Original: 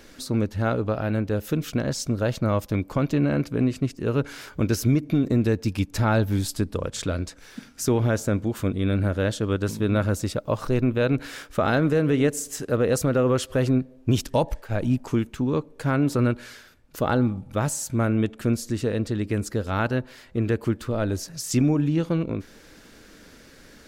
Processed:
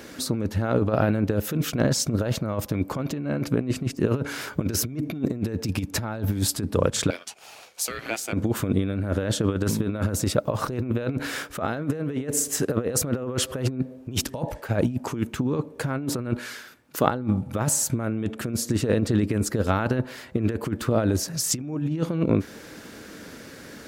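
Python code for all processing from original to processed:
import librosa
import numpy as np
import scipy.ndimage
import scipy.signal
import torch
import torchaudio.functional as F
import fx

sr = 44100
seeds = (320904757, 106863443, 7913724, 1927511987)

y = fx.chain(x, sr, fx.highpass(hz=1200.0, slope=12),
    fx.ring_mod(carrier_hz=880.0), at=(7.1, 8.33))
y = fx.chain(y, sr, fx.highpass(hz=280.0, slope=6),
    fx.peak_eq(hz=570.0, db=-4.0, octaves=0.86), at=(16.39, 17.07))
y = fx.over_compress(y, sr, threshold_db=-26.0, ratio=-0.5)
y = scipy.signal.sosfilt(scipy.signal.butter(2, 89.0, 'highpass', fs=sr, output='sos'), y)
y = fx.peak_eq(y, sr, hz=4200.0, db=-3.5, octaves=2.2)
y = y * 10.0 ** (4.0 / 20.0)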